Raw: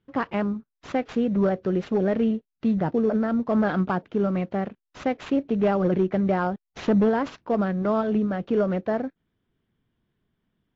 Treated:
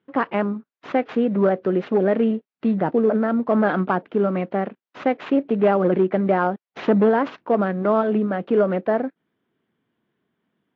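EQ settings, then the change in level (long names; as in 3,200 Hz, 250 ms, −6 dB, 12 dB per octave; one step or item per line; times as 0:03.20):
band-pass filter 230–2,900 Hz
+5.5 dB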